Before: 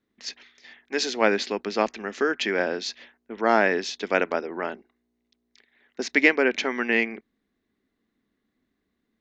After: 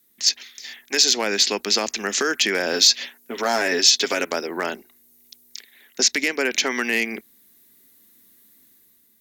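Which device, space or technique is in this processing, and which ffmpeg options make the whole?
FM broadcast chain: -filter_complex "[0:a]highpass=49,dynaudnorm=f=180:g=7:m=2.11,acrossover=split=550|6800[s0][s1][s2];[s0]acompressor=threshold=0.0562:ratio=4[s3];[s1]acompressor=threshold=0.0562:ratio=4[s4];[s2]acompressor=threshold=0.00224:ratio=4[s5];[s3][s4][s5]amix=inputs=3:normalize=0,aemphasis=mode=production:type=75fm,alimiter=limit=0.178:level=0:latency=1:release=58,asoftclip=type=hard:threshold=0.15,lowpass=f=15000:w=0.5412,lowpass=f=15000:w=1.3066,aemphasis=mode=production:type=75fm,asettb=1/sr,asplit=3[s6][s7][s8];[s6]atrim=end=2.734[s9];[s7]atrim=start=2.73:end=4.25,asetpts=PTS-STARTPTS,afade=t=in:d=0.004:c=qsin,afade=t=out:st=1.516:d=0.004:c=qsin,aecho=1:1:7.4:0.67,atrim=end_sample=67032[s10];[s8]atrim=start=4.246[s11];[s9][s10]acrossfade=d=0.004:c1=hsin:c2=qsin[s12];[s12][s11]acrossfade=d=0.004:c1=qsin:c2=hsin,volume=1.41"

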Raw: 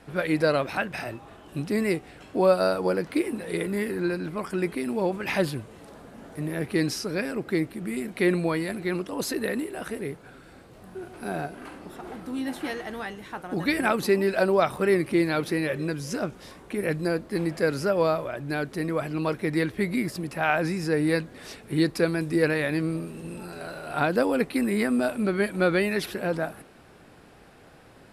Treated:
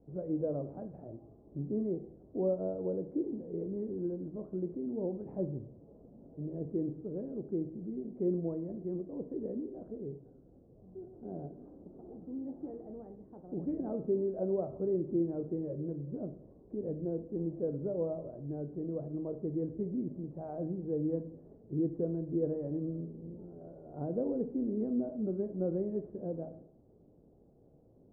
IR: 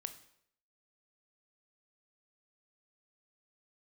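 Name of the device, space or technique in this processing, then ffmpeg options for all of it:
next room: -filter_complex "[0:a]lowpass=f=550:w=0.5412,lowpass=f=550:w=1.3066[s0];[1:a]atrim=start_sample=2205[s1];[s0][s1]afir=irnorm=-1:irlink=0,volume=0.531"

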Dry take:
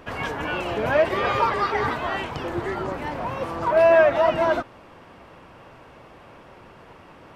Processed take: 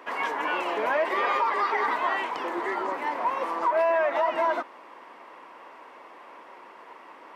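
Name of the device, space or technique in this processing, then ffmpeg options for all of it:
laptop speaker: -af "highpass=f=280:w=0.5412,highpass=f=280:w=1.3066,equalizer=f=1000:t=o:w=0.48:g=9.5,equalizer=f=2000:t=o:w=0.38:g=7,alimiter=limit=0.237:level=0:latency=1:release=115,volume=0.668"

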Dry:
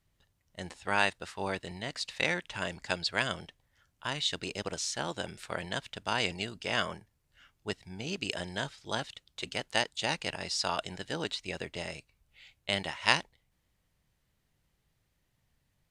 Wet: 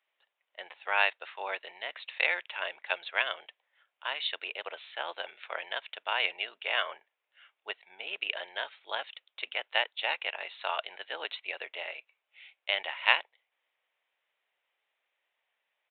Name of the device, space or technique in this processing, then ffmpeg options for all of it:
musical greeting card: -af "aresample=8000,aresample=44100,highpass=f=540:w=0.5412,highpass=f=540:w=1.3066,equalizer=f=150:t=o:w=0.42:g=3,equalizer=f=2400:t=o:w=0.53:g=5.5"

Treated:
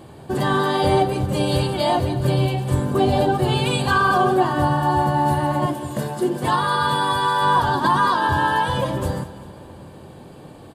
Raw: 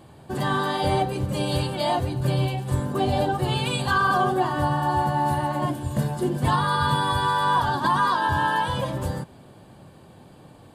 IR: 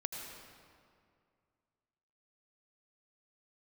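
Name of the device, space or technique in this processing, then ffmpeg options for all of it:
compressed reverb return: -filter_complex "[0:a]asplit=2[s0][s1];[1:a]atrim=start_sample=2205[s2];[s1][s2]afir=irnorm=-1:irlink=0,acompressor=threshold=0.0158:ratio=6,volume=0.447[s3];[s0][s3]amix=inputs=2:normalize=0,asettb=1/sr,asplit=3[s4][s5][s6];[s4]atrim=end=5.664[s7];[s5]atrim=start=5.66:end=7.42,asetpts=PTS-STARTPTS,afade=t=in:d=0.004:c=qsin,afade=t=out:st=1.756:d=0.004:c=qsin,highpass=f=290:p=1[s8];[s6]atrim=start=7.416[s9];[s7][s8]acrossfade=d=0.004:c1=hsin:c2=qsin[s10];[s10][s9]acrossfade=d=0.004:c1=qsin:c2=hsin,equalizer=f=390:w=1.5:g=4,aecho=1:1:198|396|594|792:0.168|0.0772|0.0355|0.0163,volume=1.33"

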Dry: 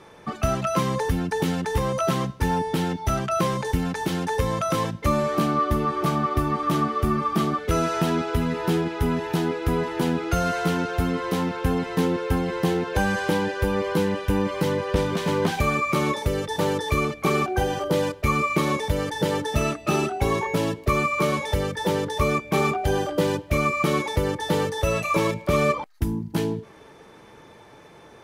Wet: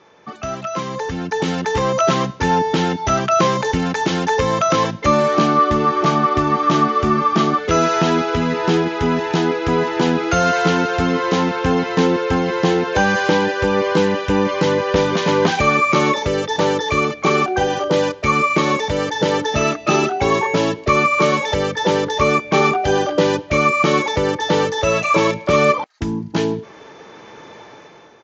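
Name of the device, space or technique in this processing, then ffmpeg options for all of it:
Bluetooth headset: -af "highpass=f=240:p=1,dynaudnorm=f=890:g=3:m=5.62,aresample=16000,aresample=44100,volume=0.841" -ar 16000 -c:a sbc -b:a 64k

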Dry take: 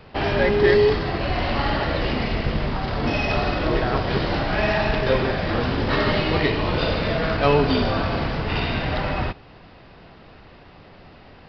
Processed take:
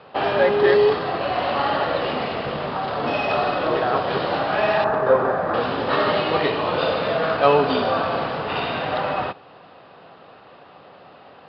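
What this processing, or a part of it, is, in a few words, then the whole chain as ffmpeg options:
kitchen radio: -filter_complex "[0:a]highpass=210,equalizer=f=220:t=q:w=4:g=-5,equalizer=f=330:t=q:w=4:g=-4,equalizer=f=530:t=q:w=4:g=4,equalizer=f=760:t=q:w=4:g=4,equalizer=f=1200:t=q:w=4:g=5,equalizer=f=2100:t=q:w=4:g=-6,lowpass=f=4200:w=0.5412,lowpass=f=4200:w=1.3066,asettb=1/sr,asplit=3[s0][s1][s2];[s0]atrim=end=4.844[s3];[s1]atrim=start=4.84:end=5.54,asetpts=PTS-STARTPTS,afade=t=in:d=0.004:c=qsin,afade=t=out:st=0.696:d=0.004:c=qsin,highshelf=f=2000:t=q:w=1.5:g=-12.5[s4];[s2]atrim=start=5.536[s5];[s3][s4]acrossfade=d=0.004:c1=hsin:c2=qsin[s6];[s6][s5]acrossfade=d=0.004:c1=qsin:c2=hsin,volume=1.12"

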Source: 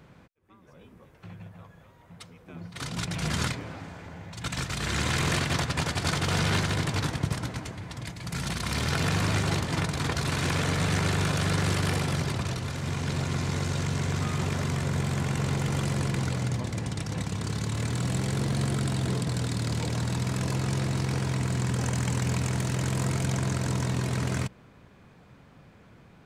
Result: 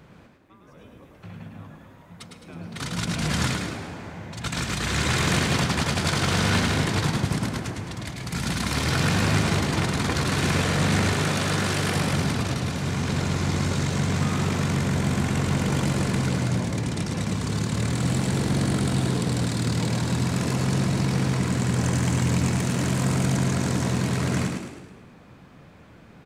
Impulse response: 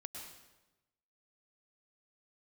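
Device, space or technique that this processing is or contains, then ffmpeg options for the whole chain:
saturated reverb return: -filter_complex "[0:a]asplit=2[s0][s1];[1:a]atrim=start_sample=2205[s2];[s1][s2]afir=irnorm=-1:irlink=0,asoftclip=type=tanh:threshold=0.0631,volume=0.794[s3];[s0][s3]amix=inputs=2:normalize=0,asettb=1/sr,asplit=3[s4][s5][s6];[s4]atrim=end=11.134[s7];[s5]atrim=start=11.13:end=11.96,asetpts=PTS-STARTPTS,afade=t=in:d=0.004:c=qsin,afade=t=out:st=0.826:d=0.004:c=qsin,highpass=f=160:p=1[s8];[s6]atrim=start=11.956[s9];[s7][s8]acrossfade=d=0.004:c1=hsin:c2=qsin[s10];[s10][s9]acrossfade=d=0.004:c1=qsin:c2=hsin,asplit=7[s11][s12][s13][s14][s15][s16][s17];[s12]adelay=106,afreqshift=52,volume=0.562[s18];[s13]adelay=212,afreqshift=104,volume=0.26[s19];[s14]adelay=318,afreqshift=156,volume=0.119[s20];[s15]adelay=424,afreqshift=208,volume=0.055[s21];[s16]adelay=530,afreqshift=260,volume=0.0251[s22];[s17]adelay=636,afreqshift=312,volume=0.0116[s23];[s11][s18][s19][s20][s21][s22][s23]amix=inputs=7:normalize=0"

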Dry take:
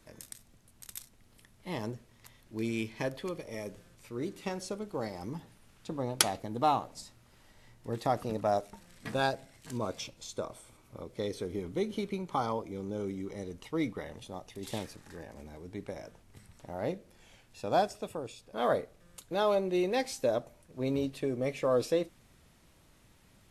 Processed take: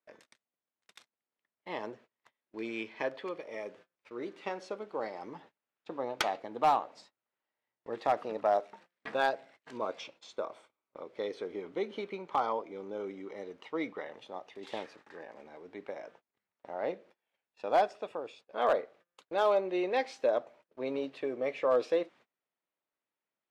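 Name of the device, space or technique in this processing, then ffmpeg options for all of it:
walkie-talkie: -af "highpass=440,lowpass=2800,asoftclip=type=hard:threshold=0.0841,agate=range=0.0447:threshold=0.00126:ratio=16:detection=peak,volume=1.33"

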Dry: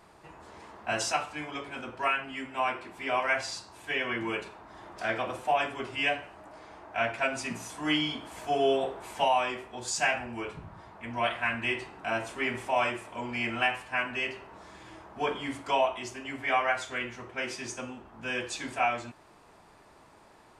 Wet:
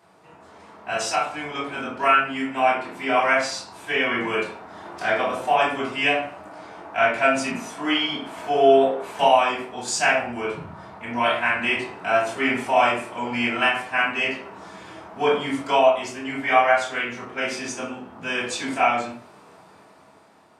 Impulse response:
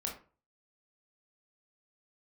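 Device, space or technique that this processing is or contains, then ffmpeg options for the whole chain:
far laptop microphone: -filter_complex "[1:a]atrim=start_sample=2205[s0];[0:a][s0]afir=irnorm=-1:irlink=0,highpass=f=100:w=0.5412,highpass=f=100:w=1.3066,dynaudnorm=f=340:g=7:m=2.37,asettb=1/sr,asplit=3[s1][s2][s3];[s1]atrim=end=7.514[s4];[s2]atrim=start=7.51:end=9.19,asetpts=PTS-STARTPTS,afade=t=in:d=0.004:c=qsin,afade=t=out:st=1.676:d=0.004:c=qsin,bass=f=250:g=-4,treble=f=4000:g=-6[s5];[s3]atrim=start=9.186[s6];[s4][s5]acrossfade=d=0.004:c1=hsin:c2=qsin[s7];[s7][s6]acrossfade=d=0.004:c1=qsin:c2=hsin"

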